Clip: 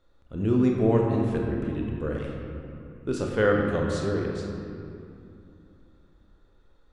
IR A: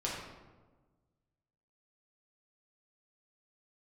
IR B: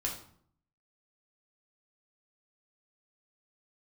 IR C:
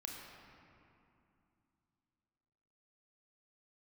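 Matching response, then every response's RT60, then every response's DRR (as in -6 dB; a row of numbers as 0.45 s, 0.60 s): C; 1.3 s, 0.60 s, 2.7 s; -5.5 dB, -2.0 dB, -1.0 dB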